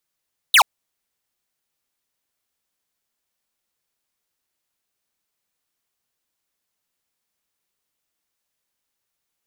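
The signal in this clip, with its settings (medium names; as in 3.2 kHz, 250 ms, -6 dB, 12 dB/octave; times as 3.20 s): laser zap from 4.1 kHz, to 710 Hz, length 0.08 s square, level -11 dB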